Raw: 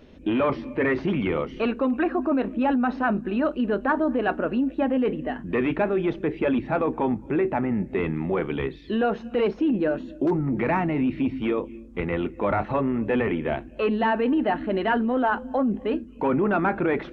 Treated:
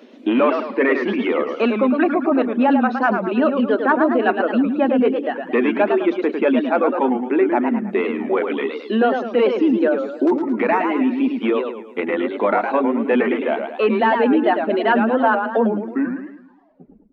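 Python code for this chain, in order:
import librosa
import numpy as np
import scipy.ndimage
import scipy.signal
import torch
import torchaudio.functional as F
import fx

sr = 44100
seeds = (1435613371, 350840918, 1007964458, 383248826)

y = fx.tape_stop_end(x, sr, length_s=1.77)
y = scipy.signal.sosfilt(scipy.signal.ellip(4, 1.0, 40, 220.0, 'highpass', fs=sr, output='sos'), y)
y = fx.dereverb_blind(y, sr, rt60_s=1.0)
y = fx.echo_warbled(y, sr, ms=107, feedback_pct=44, rate_hz=2.8, cents=183, wet_db=-6.0)
y = y * 10.0 ** (7.0 / 20.0)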